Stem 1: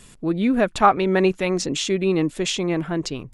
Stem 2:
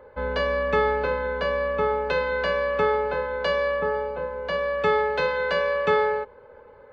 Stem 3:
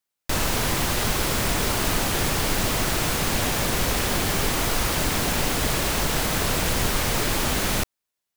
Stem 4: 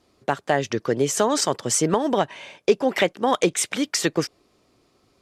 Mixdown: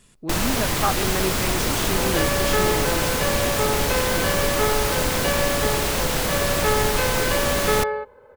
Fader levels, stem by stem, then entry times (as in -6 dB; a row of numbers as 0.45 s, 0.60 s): -8.0 dB, -1.0 dB, +0.5 dB, -16.5 dB; 0.00 s, 1.80 s, 0.00 s, 0.00 s